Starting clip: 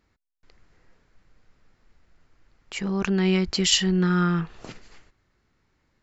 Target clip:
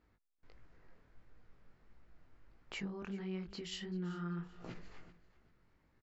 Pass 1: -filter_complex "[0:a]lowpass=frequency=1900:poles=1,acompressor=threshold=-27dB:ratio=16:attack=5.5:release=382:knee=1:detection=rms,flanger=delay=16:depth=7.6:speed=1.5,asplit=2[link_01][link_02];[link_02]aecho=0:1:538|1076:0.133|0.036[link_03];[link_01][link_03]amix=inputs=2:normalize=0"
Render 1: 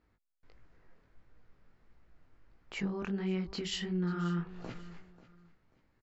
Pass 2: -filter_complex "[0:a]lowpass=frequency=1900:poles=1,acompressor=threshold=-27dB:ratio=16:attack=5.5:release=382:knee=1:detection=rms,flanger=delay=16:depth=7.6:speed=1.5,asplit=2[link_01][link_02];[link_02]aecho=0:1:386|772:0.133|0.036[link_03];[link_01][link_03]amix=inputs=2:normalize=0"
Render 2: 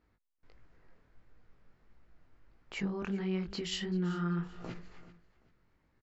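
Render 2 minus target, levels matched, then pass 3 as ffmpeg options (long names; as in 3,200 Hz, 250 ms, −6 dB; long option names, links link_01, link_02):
downward compressor: peak gain reduction −7.5 dB
-filter_complex "[0:a]lowpass=frequency=1900:poles=1,acompressor=threshold=-35dB:ratio=16:attack=5.5:release=382:knee=1:detection=rms,flanger=delay=16:depth=7.6:speed=1.5,asplit=2[link_01][link_02];[link_02]aecho=0:1:386|772:0.133|0.036[link_03];[link_01][link_03]amix=inputs=2:normalize=0"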